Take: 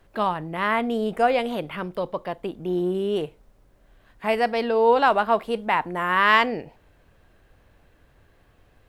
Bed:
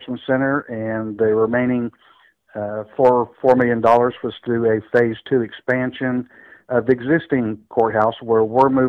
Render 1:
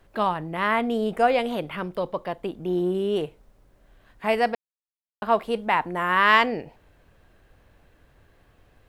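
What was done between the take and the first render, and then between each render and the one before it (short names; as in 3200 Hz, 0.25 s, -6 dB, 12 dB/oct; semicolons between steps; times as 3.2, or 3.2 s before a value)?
4.55–5.22 mute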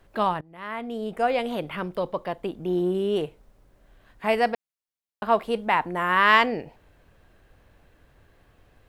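0.41–1.72 fade in, from -23.5 dB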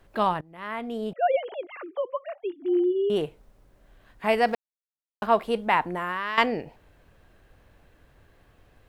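1.13–3.1 sine-wave speech; 4.48–5.26 G.711 law mismatch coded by mu; 5.82–6.38 compressor 12:1, threshold -25 dBFS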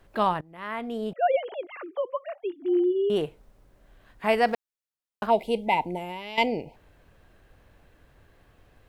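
5.3–6.74 spectral gain 990–2000 Hz -25 dB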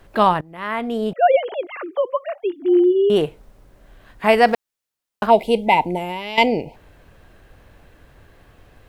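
gain +8.5 dB; limiter -2 dBFS, peak gain reduction 1 dB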